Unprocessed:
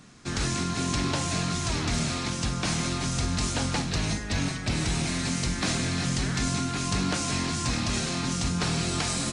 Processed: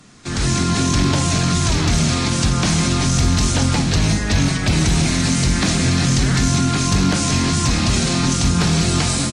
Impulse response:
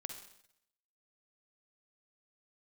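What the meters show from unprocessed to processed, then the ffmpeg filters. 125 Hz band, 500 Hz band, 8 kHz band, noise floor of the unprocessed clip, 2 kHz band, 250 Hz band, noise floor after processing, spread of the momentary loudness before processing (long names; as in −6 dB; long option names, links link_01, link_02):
+12.5 dB, +9.0 dB, +10.0 dB, −34 dBFS, +8.5 dB, +11.0 dB, −22 dBFS, 2 LU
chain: -filter_complex "[0:a]bandreject=frequency=60:width_type=h:width=6,bandreject=frequency=120:width_type=h:width=6,bandreject=frequency=180:width_type=h:width=6,bandreject=frequency=240:width_type=h:width=6,acrossover=split=260[link_01][link_02];[link_02]acompressor=threshold=-35dB:ratio=2.5[link_03];[link_01][link_03]amix=inputs=2:normalize=0,asplit=2[link_04][link_05];[link_05]alimiter=level_in=1.5dB:limit=-24dB:level=0:latency=1,volume=-1.5dB,volume=-2dB[link_06];[link_04][link_06]amix=inputs=2:normalize=0,dynaudnorm=framelen=250:gausssize=3:maxgain=10dB,volume=8.5dB,asoftclip=hard,volume=-8.5dB,aecho=1:1:354:0.0891" -ar 48000 -c:a libvorbis -b:a 48k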